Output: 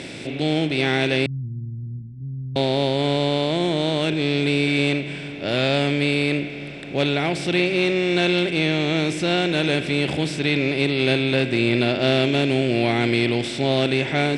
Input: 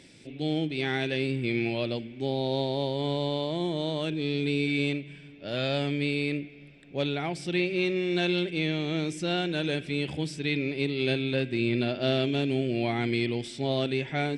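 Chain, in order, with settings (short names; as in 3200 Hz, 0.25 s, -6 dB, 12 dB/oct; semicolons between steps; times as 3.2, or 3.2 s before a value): per-bin compression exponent 0.6; 1.26–2.56 inverse Chebyshev low-pass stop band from 690 Hz, stop band 70 dB; gain +5 dB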